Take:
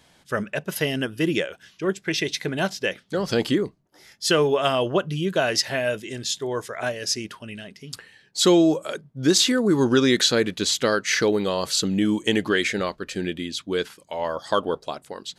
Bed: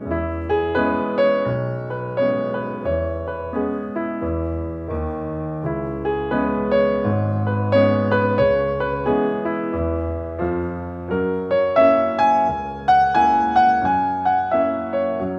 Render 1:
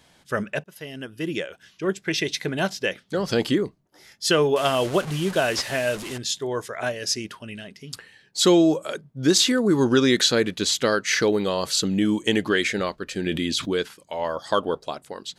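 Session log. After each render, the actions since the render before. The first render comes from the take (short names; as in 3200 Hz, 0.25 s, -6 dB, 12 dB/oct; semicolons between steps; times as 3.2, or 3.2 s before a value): 0.64–1.95 fade in, from -22 dB; 4.56–6.18 delta modulation 64 kbps, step -28.5 dBFS; 13.26–13.76 fast leveller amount 70%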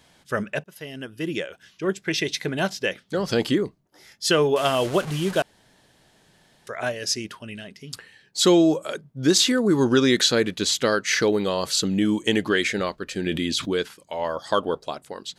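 5.42–6.67 room tone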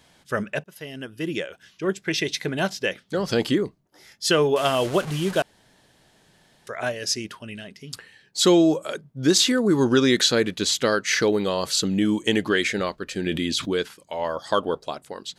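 nothing audible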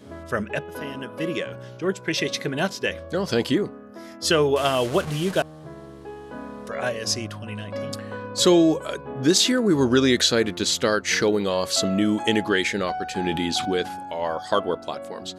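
add bed -16 dB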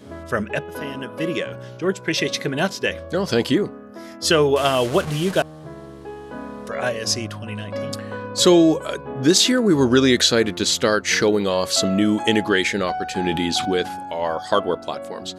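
gain +3 dB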